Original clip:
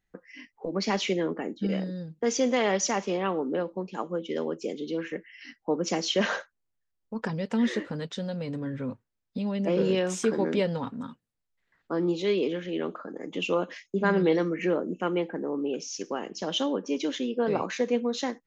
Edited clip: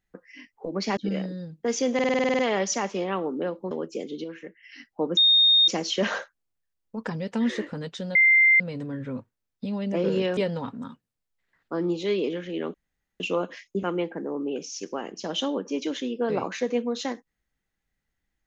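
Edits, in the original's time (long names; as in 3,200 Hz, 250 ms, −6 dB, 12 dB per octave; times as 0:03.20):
0:00.97–0:01.55: remove
0:02.52: stutter 0.05 s, 10 plays
0:03.84–0:04.40: remove
0:04.93–0:05.32: clip gain −6.5 dB
0:05.86: insert tone 3,690 Hz −14.5 dBFS 0.51 s
0:08.33: insert tone 2,090 Hz −14 dBFS 0.45 s
0:10.10–0:10.56: remove
0:12.93–0:13.39: fill with room tone
0:14.02–0:15.01: remove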